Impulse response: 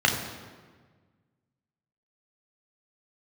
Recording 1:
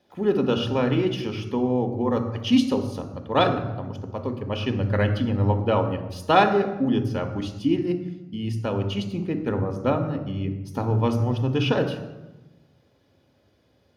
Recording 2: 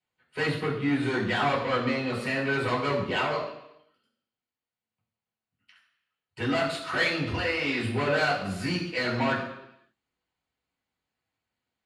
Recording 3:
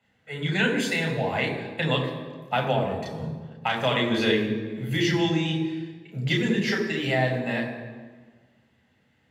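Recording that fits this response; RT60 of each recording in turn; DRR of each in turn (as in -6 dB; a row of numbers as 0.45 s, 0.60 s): 3; 1.1 s, 0.80 s, 1.5 s; 4.5 dB, -6.0 dB, 0.5 dB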